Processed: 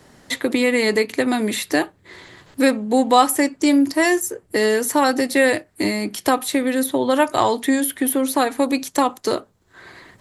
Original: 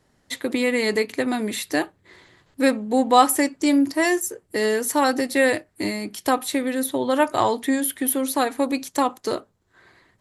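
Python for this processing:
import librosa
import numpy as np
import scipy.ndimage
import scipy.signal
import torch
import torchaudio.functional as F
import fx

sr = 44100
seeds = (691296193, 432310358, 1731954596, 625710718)

y = fx.band_squash(x, sr, depth_pct=40)
y = y * 10.0 ** (3.0 / 20.0)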